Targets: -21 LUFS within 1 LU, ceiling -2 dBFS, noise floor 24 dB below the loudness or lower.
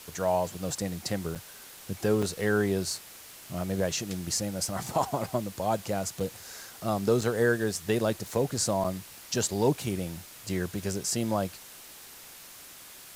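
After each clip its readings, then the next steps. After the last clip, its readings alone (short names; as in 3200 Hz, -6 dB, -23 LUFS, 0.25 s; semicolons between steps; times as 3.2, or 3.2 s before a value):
dropouts 5; longest dropout 5.6 ms; noise floor -48 dBFS; noise floor target -54 dBFS; loudness -30.0 LUFS; peak -12.5 dBFS; loudness target -21.0 LUFS
-> interpolate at 1.35/2.22/6.2/7.21/8.84, 5.6 ms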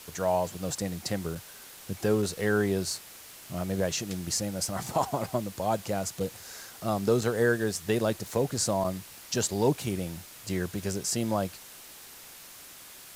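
dropouts 0; noise floor -48 dBFS; noise floor target -54 dBFS
-> denoiser 6 dB, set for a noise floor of -48 dBFS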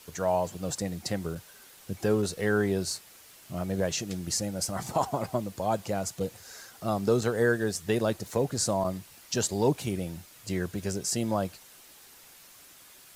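noise floor -53 dBFS; noise floor target -54 dBFS
-> denoiser 6 dB, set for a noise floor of -53 dBFS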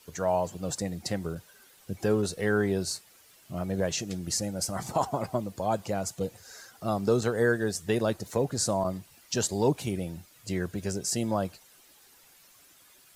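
noise floor -58 dBFS; loudness -30.0 LUFS; peak -12.5 dBFS; loudness target -21.0 LUFS
-> gain +9 dB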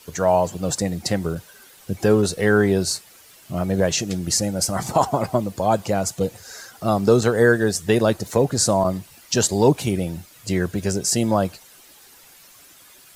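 loudness -21.0 LUFS; peak -3.5 dBFS; noise floor -49 dBFS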